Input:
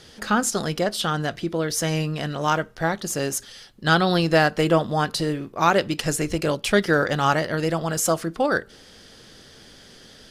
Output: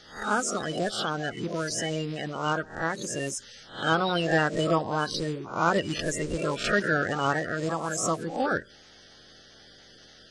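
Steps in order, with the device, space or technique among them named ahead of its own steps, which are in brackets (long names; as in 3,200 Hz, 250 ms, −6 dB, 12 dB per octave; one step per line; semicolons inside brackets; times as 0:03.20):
peak hold with a rise ahead of every peak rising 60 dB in 0.44 s
clip after many re-uploads (low-pass filter 8,600 Hz 24 dB per octave; spectral magnitudes quantised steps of 30 dB)
level −6 dB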